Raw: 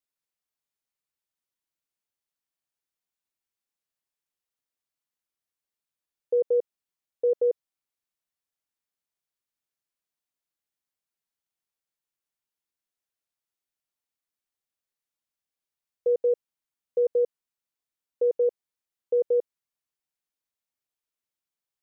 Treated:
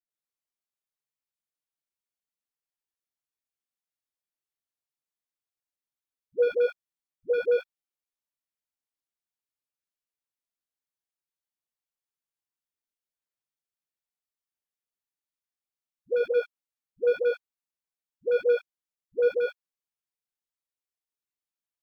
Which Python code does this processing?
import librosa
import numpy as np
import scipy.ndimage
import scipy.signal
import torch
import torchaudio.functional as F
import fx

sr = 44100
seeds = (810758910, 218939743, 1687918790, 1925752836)

y = fx.leveller(x, sr, passes=2)
y = fx.dispersion(y, sr, late='highs', ms=104.0, hz=420.0)
y = fx.chorus_voices(y, sr, voices=4, hz=0.85, base_ms=19, depth_ms=4.4, mix_pct=35)